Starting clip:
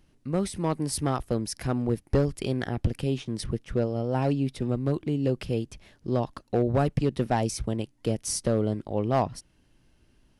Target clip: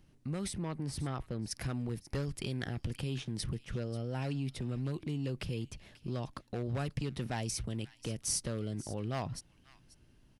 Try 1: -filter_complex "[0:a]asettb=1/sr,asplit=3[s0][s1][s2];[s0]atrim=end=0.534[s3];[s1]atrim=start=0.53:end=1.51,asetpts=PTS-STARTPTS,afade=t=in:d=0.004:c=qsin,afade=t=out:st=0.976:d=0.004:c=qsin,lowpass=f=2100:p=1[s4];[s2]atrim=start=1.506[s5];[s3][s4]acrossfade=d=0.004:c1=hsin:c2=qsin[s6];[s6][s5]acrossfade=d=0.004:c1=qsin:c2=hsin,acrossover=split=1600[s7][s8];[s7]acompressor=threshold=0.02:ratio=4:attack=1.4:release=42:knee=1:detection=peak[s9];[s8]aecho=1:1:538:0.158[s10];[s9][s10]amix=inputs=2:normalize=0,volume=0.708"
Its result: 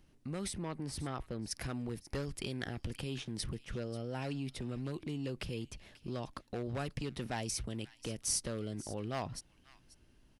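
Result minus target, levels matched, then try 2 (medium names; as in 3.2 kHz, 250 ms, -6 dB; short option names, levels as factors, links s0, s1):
125 Hz band -3.0 dB
-filter_complex "[0:a]asettb=1/sr,asplit=3[s0][s1][s2];[s0]atrim=end=0.534[s3];[s1]atrim=start=0.53:end=1.51,asetpts=PTS-STARTPTS,afade=t=in:d=0.004:c=qsin,afade=t=out:st=0.976:d=0.004:c=qsin,lowpass=f=2100:p=1[s4];[s2]atrim=start=1.506[s5];[s3][s4]acrossfade=d=0.004:c1=hsin:c2=qsin[s6];[s6][s5]acrossfade=d=0.004:c1=qsin:c2=hsin,acrossover=split=1600[s7][s8];[s7]acompressor=threshold=0.02:ratio=4:attack=1.4:release=42:knee=1:detection=peak,equalizer=f=130:t=o:w=1.2:g=5.5[s9];[s8]aecho=1:1:538:0.158[s10];[s9][s10]amix=inputs=2:normalize=0,volume=0.708"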